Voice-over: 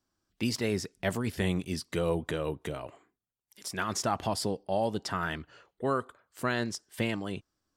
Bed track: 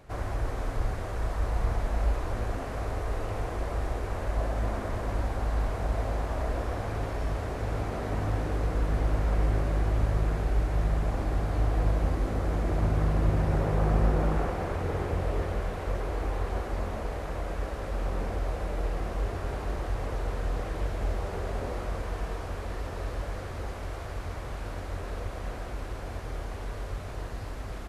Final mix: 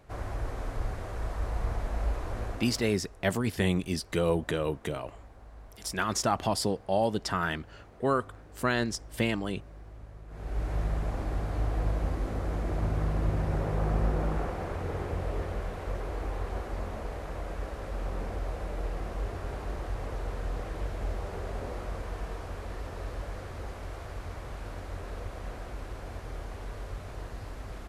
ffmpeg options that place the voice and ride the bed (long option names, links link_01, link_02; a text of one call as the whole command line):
ffmpeg -i stem1.wav -i stem2.wav -filter_complex "[0:a]adelay=2200,volume=2.5dB[link_01];[1:a]volume=14dB,afade=type=out:start_time=2.44:duration=0.54:silence=0.133352,afade=type=in:start_time=10.28:duration=0.42:silence=0.133352[link_02];[link_01][link_02]amix=inputs=2:normalize=0" out.wav